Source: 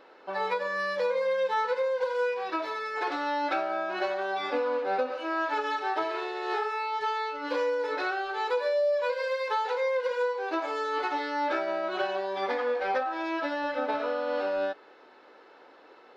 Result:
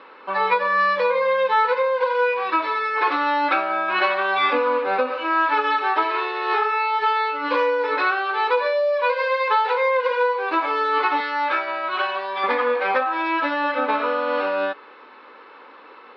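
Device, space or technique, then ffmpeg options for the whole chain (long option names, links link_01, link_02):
kitchen radio: -filter_complex "[0:a]asettb=1/sr,asplit=3[link_01][link_02][link_03];[link_01]atrim=end=11.204[link_04];[link_02]atrim=start=11.2:end=12.44,asetpts=PTS-STARTPTS,afade=type=in:duration=0.004:curve=qsin,afade=type=out:start_time=1.236:duration=0.004:curve=qsin,highpass=frequency=760:poles=1[link_05];[link_03]atrim=start=12.436[link_06];[link_04][link_05]acrossfade=duration=0.004:curve1=hsin:curve2=qsin[link_07];[link_07][link_06]acrossfade=duration=0.004:curve1=qsin:curve2=hsin,highpass=210,equalizer=frequency=220:width_type=q:width=4:gain=4,equalizer=frequency=360:width_type=q:width=4:gain=-5,equalizer=frequency=680:width_type=q:width=4:gain=-9,equalizer=frequency=1100:width_type=q:width=4:gain=9,equalizer=frequency=2400:width_type=q:width=4:gain=5,lowpass=frequency=4200:width=0.5412,lowpass=frequency=4200:width=1.3066,asettb=1/sr,asplit=3[link_08][link_09][link_10];[link_08]atrim=end=3.884[link_11];[link_09]atrim=start=3.88:end=4.53,asetpts=PTS-STARTPTS,afade=type=in:duration=0.004:curve=qsin,afade=type=out:start_time=0.646:duration=0.004:curve=qsin,equalizer=frequency=2600:width=0.74:gain=4.5[link_12];[link_10]atrim=start=4.526[link_13];[link_11][link_12]acrossfade=duration=0.004:curve1=hsin:curve2=qsin[link_14];[link_14][link_13]acrossfade=duration=0.004:curve1=qsin:curve2=hsin,volume=8.5dB"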